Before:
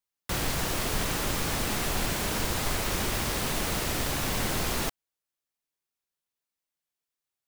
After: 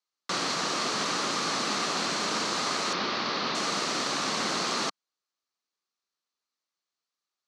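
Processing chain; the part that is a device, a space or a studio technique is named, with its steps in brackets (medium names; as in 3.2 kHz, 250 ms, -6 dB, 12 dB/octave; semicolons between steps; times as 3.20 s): television speaker (cabinet simulation 190–7300 Hz, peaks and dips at 1.2 kHz +9 dB, 4.3 kHz +8 dB, 6 kHz +4 dB); 2.93–3.55 s: inverse Chebyshev low-pass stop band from 9 kHz, stop band 40 dB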